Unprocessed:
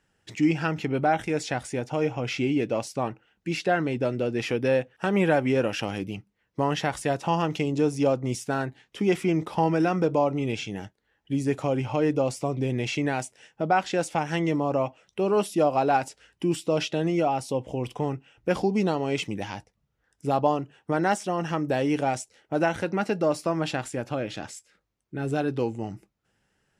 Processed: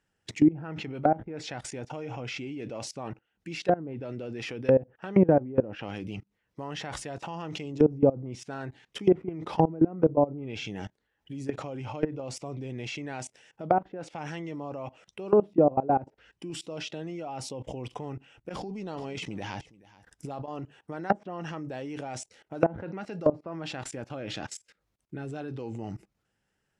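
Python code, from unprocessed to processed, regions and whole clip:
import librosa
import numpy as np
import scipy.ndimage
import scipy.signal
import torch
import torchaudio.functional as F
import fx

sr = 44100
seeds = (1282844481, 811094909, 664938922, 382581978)

y = fx.chain(x, sr, fx.over_compress(threshold_db=-34.0, ratio=-1.0),
    fx.echo_single(ms=428, db=-15.5), at=(18.49, 20.61))
y = fx.level_steps(y, sr, step_db=21)
y = fx.env_lowpass_down(y, sr, base_hz=570.0, full_db=-26.0)
y = F.gain(torch.from_numpy(y), 5.5).numpy()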